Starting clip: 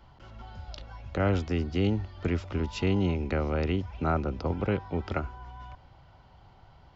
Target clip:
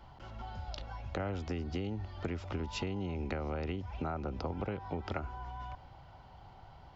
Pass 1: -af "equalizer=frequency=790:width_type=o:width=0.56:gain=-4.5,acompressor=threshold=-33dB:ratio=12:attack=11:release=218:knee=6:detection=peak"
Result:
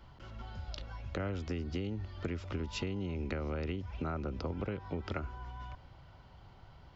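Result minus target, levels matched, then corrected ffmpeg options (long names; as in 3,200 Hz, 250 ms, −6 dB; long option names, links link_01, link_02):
1,000 Hz band −4.0 dB
-af "equalizer=frequency=790:width_type=o:width=0.56:gain=4.5,acompressor=threshold=-33dB:ratio=12:attack=11:release=218:knee=6:detection=peak"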